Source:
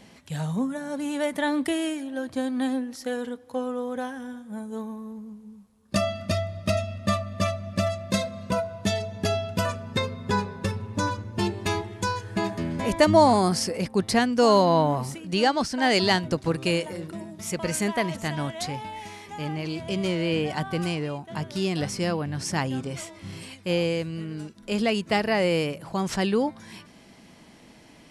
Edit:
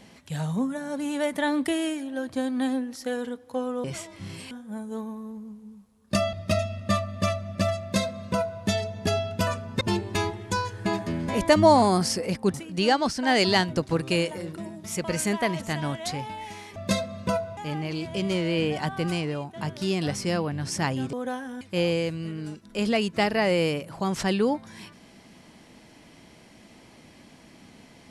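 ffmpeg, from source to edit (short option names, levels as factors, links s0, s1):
-filter_complex "[0:a]asplit=10[s0][s1][s2][s3][s4][s5][s6][s7][s8][s9];[s0]atrim=end=3.842[s10];[s1]atrim=start=22.868:end=23.542[s11];[s2]atrim=start=4.318:end=6.142[s12];[s3]atrim=start=6.508:end=9.992[s13];[s4]atrim=start=11.318:end=14.052[s14];[s5]atrim=start=15.088:end=19.312[s15];[s6]atrim=start=7.988:end=8.802[s16];[s7]atrim=start=19.308:end=22.872[s17];[s8]atrim=start=3.838:end=4.322[s18];[s9]atrim=start=23.538[s19];[s10][s11]acrossfade=d=0.004:c1=hsin:c2=hsin[s20];[s20][s12]acrossfade=d=0.004:c1=hsin:c2=hsin[s21];[s21][s13]acrossfade=d=0.004:c1=hsin:c2=hsin[s22];[s22][s14]acrossfade=d=0.004:c1=hsin:c2=hsin[s23];[s23][s15]acrossfade=d=0.004:c1=hsin:c2=hsin[s24];[s24][s16]acrossfade=d=0.004:c1=hsin:c2=hsin[s25];[s25][s17]acrossfade=d=0.004:c1=hsin:c2=hsin[s26];[s26][s18]acrossfade=d=0.004:c1=hsin:c2=hsin[s27];[s27][s19]acrossfade=d=0.004:c1=hsin:c2=hsin"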